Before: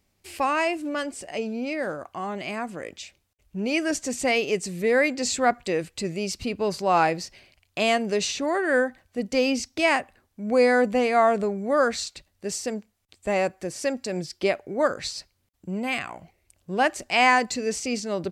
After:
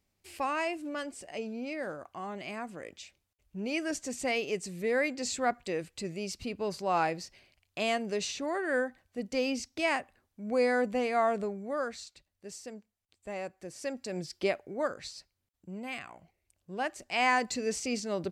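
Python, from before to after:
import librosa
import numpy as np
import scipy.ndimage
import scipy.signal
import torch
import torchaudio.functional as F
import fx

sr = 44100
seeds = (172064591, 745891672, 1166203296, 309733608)

y = fx.gain(x, sr, db=fx.line((11.43, -8.0), (11.99, -14.5), (13.41, -14.5), (14.36, -5.0), (15.09, -11.5), (16.93, -11.5), (17.56, -5.0)))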